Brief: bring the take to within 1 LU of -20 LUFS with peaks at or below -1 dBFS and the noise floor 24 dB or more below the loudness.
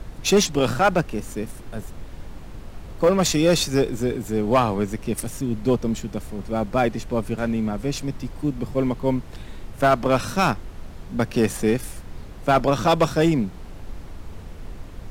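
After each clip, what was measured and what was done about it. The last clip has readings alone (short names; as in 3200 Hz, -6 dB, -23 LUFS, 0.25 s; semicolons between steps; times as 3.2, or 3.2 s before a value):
clipped 0.8%; flat tops at -10.0 dBFS; noise floor -39 dBFS; noise floor target -47 dBFS; loudness -22.5 LUFS; peak -10.0 dBFS; loudness target -20.0 LUFS
-> clip repair -10 dBFS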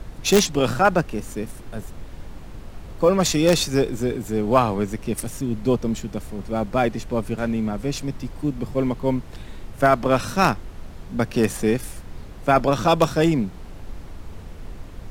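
clipped 0.0%; noise floor -39 dBFS; noise floor target -46 dBFS
-> noise print and reduce 7 dB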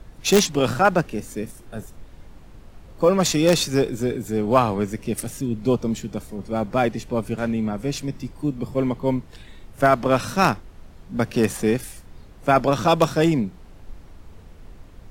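noise floor -45 dBFS; noise floor target -46 dBFS
-> noise print and reduce 6 dB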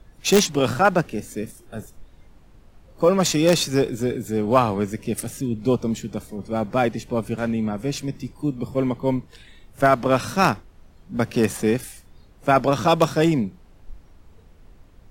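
noise floor -51 dBFS; loudness -22.0 LUFS; peak -1.0 dBFS; loudness target -20.0 LUFS
-> gain +2 dB; limiter -1 dBFS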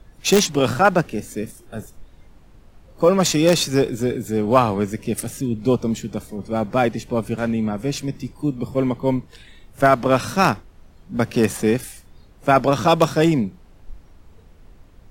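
loudness -20.5 LUFS; peak -1.0 dBFS; noise floor -49 dBFS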